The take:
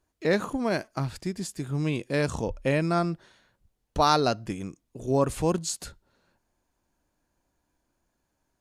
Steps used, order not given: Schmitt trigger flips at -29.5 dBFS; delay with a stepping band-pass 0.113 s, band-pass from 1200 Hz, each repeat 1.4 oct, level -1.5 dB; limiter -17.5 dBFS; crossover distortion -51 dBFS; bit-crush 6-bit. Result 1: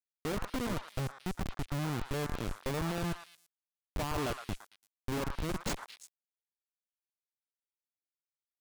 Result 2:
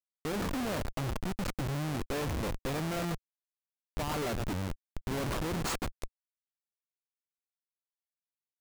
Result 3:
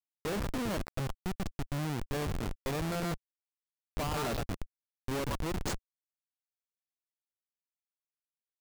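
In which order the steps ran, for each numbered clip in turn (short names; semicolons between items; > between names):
limiter > bit-crush > Schmitt trigger > delay with a stepping band-pass > crossover distortion; limiter > bit-crush > delay with a stepping band-pass > Schmitt trigger > crossover distortion; delay with a stepping band-pass > bit-crush > limiter > Schmitt trigger > crossover distortion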